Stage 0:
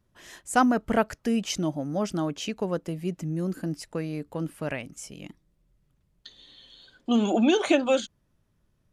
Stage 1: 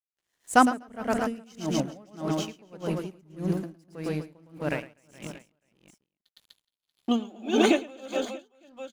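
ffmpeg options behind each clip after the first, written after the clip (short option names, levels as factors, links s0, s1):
-af "aeval=exprs='sgn(val(0))*max(abs(val(0))-0.00501,0)':c=same,aecho=1:1:110|247.5|419.4|634.2|902.8:0.631|0.398|0.251|0.158|0.1,aeval=exprs='val(0)*pow(10,-29*(0.5-0.5*cos(2*PI*1.7*n/s))/20)':c=same,volume=1.5"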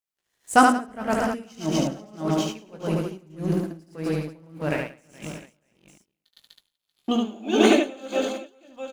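-af "aecho=1:1:19|73:0.422|0.668,volume=1.26"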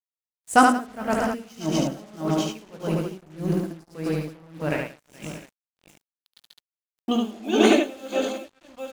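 -af "acrusher=bits=7:mix=0:aa=0.5"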